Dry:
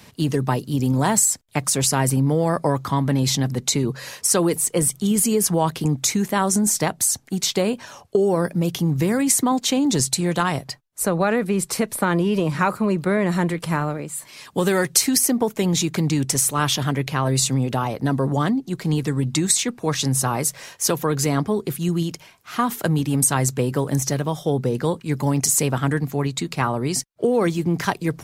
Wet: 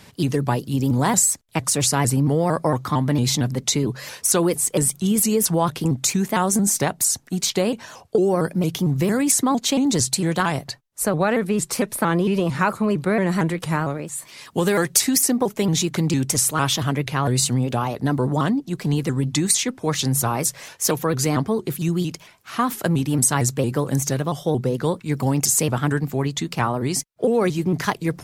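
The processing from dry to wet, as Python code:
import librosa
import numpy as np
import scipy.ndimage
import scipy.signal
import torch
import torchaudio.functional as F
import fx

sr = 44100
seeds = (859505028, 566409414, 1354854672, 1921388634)

y = fx.vibrato_shape(x, sr, shape='saw_up', rate_hz=4.4, depth_cents=160.0)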